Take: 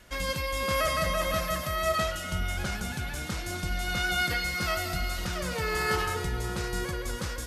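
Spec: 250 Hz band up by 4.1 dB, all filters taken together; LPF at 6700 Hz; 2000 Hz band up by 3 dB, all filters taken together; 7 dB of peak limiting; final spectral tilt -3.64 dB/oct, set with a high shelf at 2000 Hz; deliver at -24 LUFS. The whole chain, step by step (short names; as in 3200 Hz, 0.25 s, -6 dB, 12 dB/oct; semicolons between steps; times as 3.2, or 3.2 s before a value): LPF 6700 Hz; bell 250 Hz +6.5 dB; high shelf 2000 Hz -7.5 dB; bell 2000 Hz +8 dB; gain +6.5 dB; limiter -15 dBFS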